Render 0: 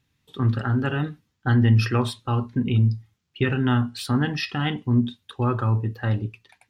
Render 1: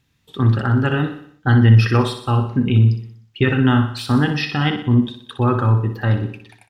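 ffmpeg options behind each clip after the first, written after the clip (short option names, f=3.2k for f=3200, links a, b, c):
-filter_complex "[0:a]aecho=1:1:61|122|183|244|305|366:0.335|0.174|0.0906|0.0471|0.0245|0.0127,acrossover=split=4400[a][b];[b]alimiter=level_in=10dB:limit=-24dB:level=0:latency=1:release=180,volume=-10dB[c];[a][c]amix=inputs=2:normalize=0,volume=5.5dB"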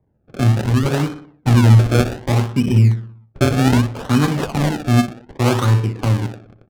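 -filter_complex "[0:a]acrossover=split=150[a][b];[b]acrusher=samples=31:mix=1:aa=0.000001:lfo=1:lforange=31:lforate=0.65[c];[a][c]amix=inputs=2:normalize=0,adynamicsmooth=sensitivity=7.5:basefreq=1k,volume=1dB"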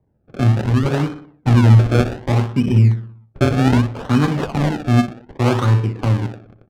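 -af "lowpass=f=3.4k:p=1"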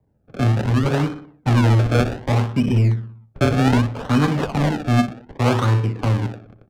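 -filter_complex "[0:a]bandreject=f=360:w=12,acrossover=split=320[a][b];[a]asoftclip=type=tanh:threshold=-12.5dB[c];[c][b]amix=inputs=2:normalize=0"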